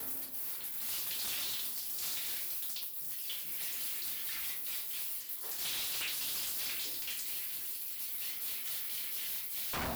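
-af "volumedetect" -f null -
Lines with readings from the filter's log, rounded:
mean_volume: -38.3 dB
max_volume: -34.0 dB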